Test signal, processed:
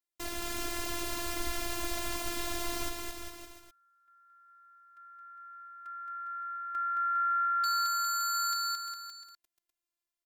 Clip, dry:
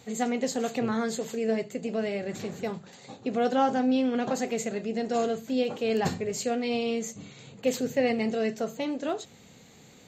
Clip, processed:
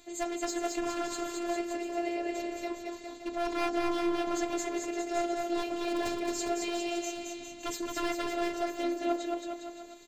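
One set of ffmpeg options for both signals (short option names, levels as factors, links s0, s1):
-af "aeval=exprs='0.0841*(abs(mod(val(0)/0.0841+3,4)-2)-1)':c=same,aecho=1:1:220|407|566|701.1|815.9:0.631|0.398|0.251|0.158|0.1,afftfilt=real='hypot(re,im)*cos(PI*b)':imag='0':win_size=512:overlap=0.75"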